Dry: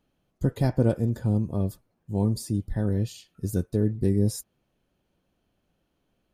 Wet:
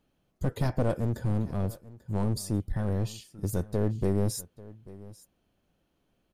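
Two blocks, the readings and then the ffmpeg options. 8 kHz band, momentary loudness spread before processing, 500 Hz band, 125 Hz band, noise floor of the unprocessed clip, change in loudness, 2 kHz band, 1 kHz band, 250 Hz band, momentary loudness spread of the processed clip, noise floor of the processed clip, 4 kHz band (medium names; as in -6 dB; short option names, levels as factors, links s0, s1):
0.0 dB, 8 LU, -2.5 dB, -3.5 dB, -75 dBFS, -4.0 dB, +0.5 dB, +1.5 dB, -5.0 dB, 19 LU, -74 dBFS, 0.0 dB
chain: -filter_complex "[0:a]aeval=exprs='clip(val(0),-1,0.0422)':c=same,asplit=2[s0][s1];[s1]aecho=0:1:840:0.106[s2];[s0][s2]amix=inputs=2:normalize=0"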